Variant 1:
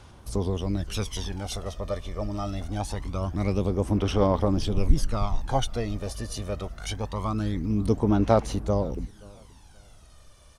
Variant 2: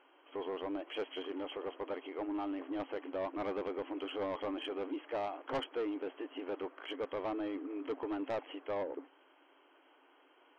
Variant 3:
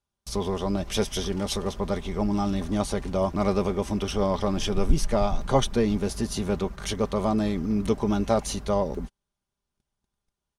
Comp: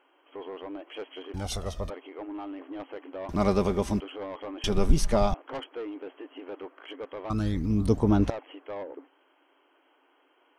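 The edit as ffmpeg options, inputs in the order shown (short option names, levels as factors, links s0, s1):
-filter_complex "[0:a]asplit=2[s0][s1];[2:a]asplit=2[s2][s3];[1:a]asplit=5[s4][s5][s6][s7][s8];[s4]atrim=end=1.342[s9];[s0]atrim=start=1.338:end=1.902[s10];[s5]atrim=start=1.898:end=3.292[s11];[s2]atrim=start=3.288:end=4.002[s12];[s6]atrim=start=3.998:end=4.642[s13];[s3]atrim=start=4.638:end=5.342[s14];[s7]atrim=start=5.338:end=7.302[s15];[s1]atrim=start=7.298:end=8.302[s16];[s8]atrim=start=8.298[s17];[s9][s10]acrossfade=d=0.004:c1=hsin:c2=hsin[s18];[s18][s11]acrossfade=d=0.004:c1=hsin:c2=hsin[s19];[s19][s12]acrossfade=d=0.004:c1=hsin:c2=hsin[s20];[s20][s13]acrossfade=d=0.004:c1=hsin:c2=hsin[s21];[s21][s14]acrossfade=d=0.004:c1=hsin:c2=hsin[s22];[s22][s15]acrossfade=d=0.004:c1=hsin:c2=hsin[s23];[s23][s16]acrossfade=d=0.004:c1=hsin:c2=hsin[s24];[s24][s17]acrossfade=d=0.004:c1=hsin:c2=hsin"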